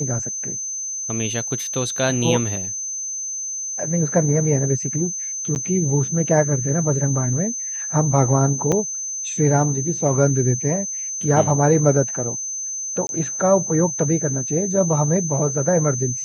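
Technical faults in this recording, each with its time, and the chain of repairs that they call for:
tone 6200 Hz -25 dBFS
5.55–5.56 gap 9.9 ms
8.72 gap 4.8 ms
13.07–13.09 gap 21 ms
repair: notch 6200 Hz, Q 30; interpolate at 5.55, 9.9 ms; interpolate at 8.72, 4.8 ms; interpolate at 13.07, 21 ms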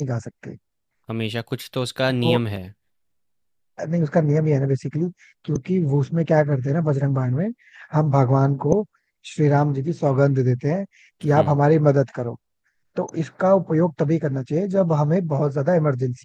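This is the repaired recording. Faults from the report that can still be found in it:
none

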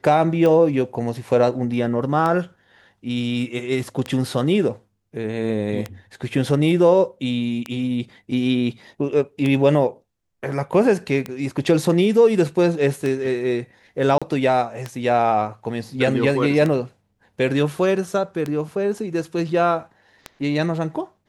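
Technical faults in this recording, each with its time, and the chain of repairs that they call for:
tick 33 1/3 rpm -12 dBFS
14.18–14.22 gap 36 ms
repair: de-click; interpolate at 14.18, 36 ms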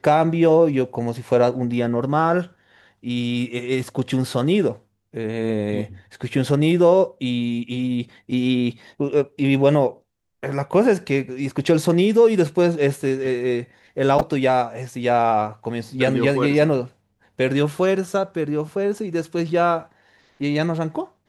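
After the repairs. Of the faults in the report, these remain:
none

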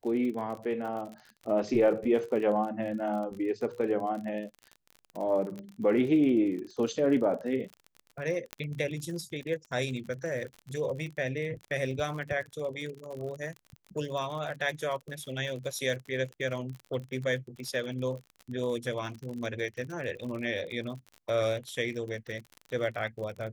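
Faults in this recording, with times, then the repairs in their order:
crackle 46/s -37 dBFS
5.59 pop -29 dBFS
8.53 pop -18 dBFS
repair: de-click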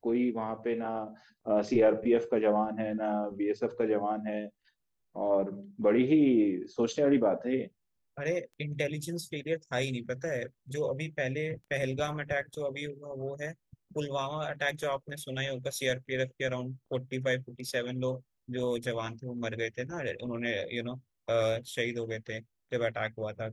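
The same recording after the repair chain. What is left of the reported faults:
5.59 pop
8.53 pop

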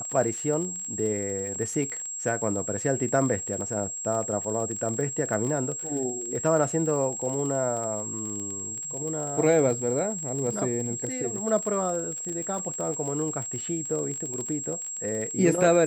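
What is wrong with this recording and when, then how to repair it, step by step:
crackle 33/s -32 dBFS
tone 7600 Hz -32 dBFS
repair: de-click; notch 7600 Hz, Q 30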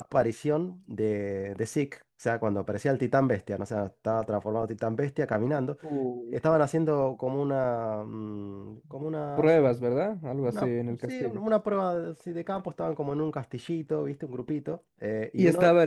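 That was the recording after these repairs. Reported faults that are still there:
none

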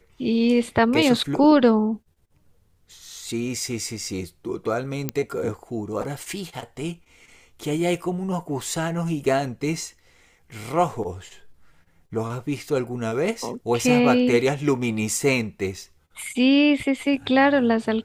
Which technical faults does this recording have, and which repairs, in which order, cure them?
5.09 pop -8 dBFS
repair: de-click

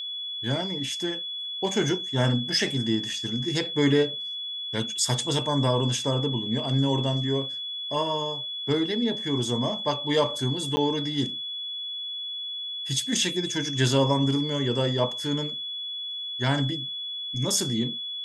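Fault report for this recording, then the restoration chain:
tone 3400 Hz -31 dBFS
10.76–10.77 gap 10 ms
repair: notch 3400 Hz, Q 30; interpolate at 10.76, 10 ms

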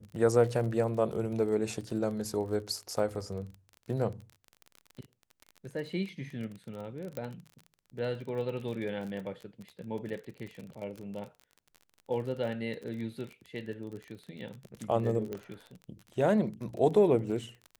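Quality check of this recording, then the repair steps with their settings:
crackle 33/s -38 dBFS
7.17 pop -23 dBFS
15.33 pop -24 dBFS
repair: de-click

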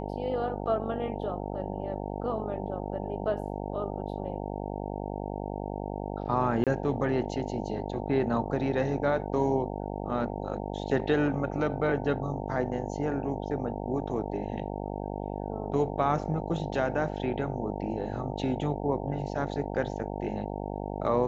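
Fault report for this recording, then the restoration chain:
buzz 50 Hz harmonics 18 -35 dBFS
6.64–6.67 gap 27 ms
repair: de-hum 50 Hz, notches 18; interpolate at 6.64, 27 ms

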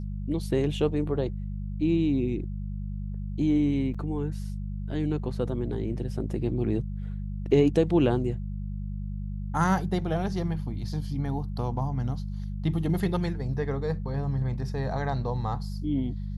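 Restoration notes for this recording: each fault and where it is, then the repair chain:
hum 50 Hz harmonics 4 -33 dBFS
3.94–3.95 gap 5.4 ms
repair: de-hum 50 Hz, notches 4; interpolate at 3.94, 5.4 ms

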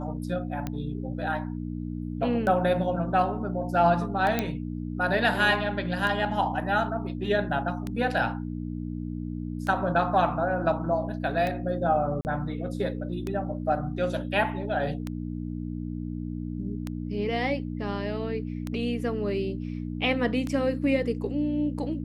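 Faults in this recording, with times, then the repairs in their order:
hum 60 Hz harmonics 5 -33 dBFS
tick 33 1/3 rpm -18 dBFS
4.39 pop -11 dBFS
12.21–12.25 gap 39 ms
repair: de-click; de-hum 60 Hz, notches 5; interpolate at 12.21, 39 ms

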